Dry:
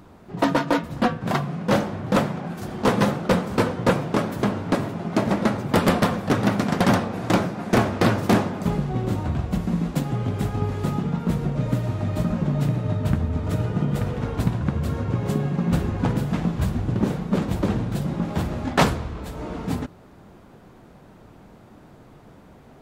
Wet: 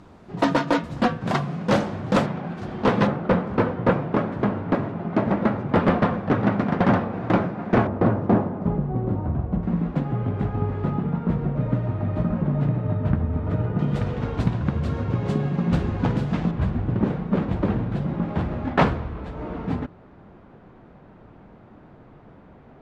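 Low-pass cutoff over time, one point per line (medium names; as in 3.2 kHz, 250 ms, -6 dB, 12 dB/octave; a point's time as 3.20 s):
7.4 kHz
from 2.26 s 3.5 kHz
from 3.07 s 2 kHz
from 7.87 s 1 kHz
from 9.63 s 1.8 kHz
from 13.79 s 4.7 kHz
from 16.51 s 2.4 kHz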